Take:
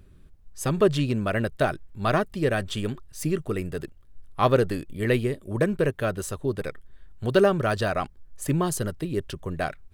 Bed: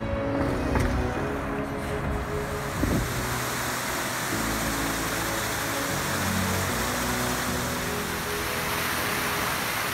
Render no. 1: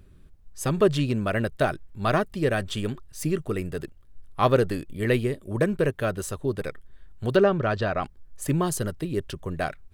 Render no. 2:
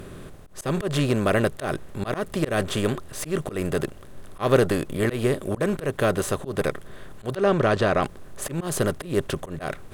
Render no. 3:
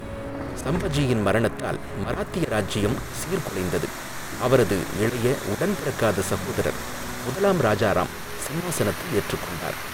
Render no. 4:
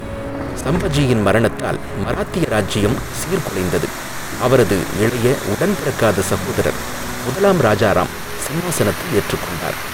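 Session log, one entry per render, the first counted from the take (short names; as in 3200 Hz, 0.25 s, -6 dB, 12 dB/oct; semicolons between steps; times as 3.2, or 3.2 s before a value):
7.36–8.03 air absorption 140 m
per-bin compression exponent 0.6; auto swell 0.144 s
add bed -6 dB
gain +7 dB; limiter -2 dBFS, peak gain reduction 2.5 dB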